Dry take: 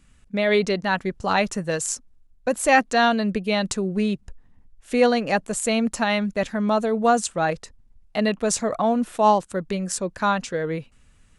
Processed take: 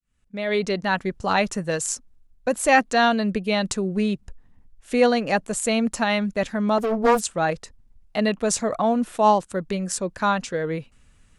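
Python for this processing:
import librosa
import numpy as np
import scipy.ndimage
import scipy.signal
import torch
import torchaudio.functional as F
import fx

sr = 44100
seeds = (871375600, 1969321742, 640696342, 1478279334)

y = fx.fade_in_head(x, sr, length_s=0.84)
y = fx.doppler_dist(y, sr, depth_ms=0.61, at=(6.78, 7.21))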